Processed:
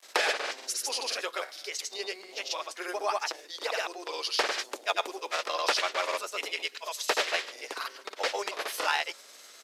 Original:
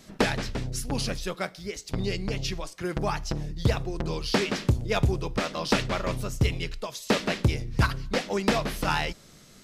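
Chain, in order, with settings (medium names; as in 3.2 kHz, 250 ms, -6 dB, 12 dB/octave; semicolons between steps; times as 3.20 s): hum 50 Hz, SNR 14 dB; in parallel at +0.5 dB: compression, threshold -31 dBFS, peak gain reduction 13 dB; on the sum: granulator, pitch spread up and down by 0 st; crackle 520 per s -48 dBFS; resampled via 32 kHz; Bessel high-pass 690 Hz, order 8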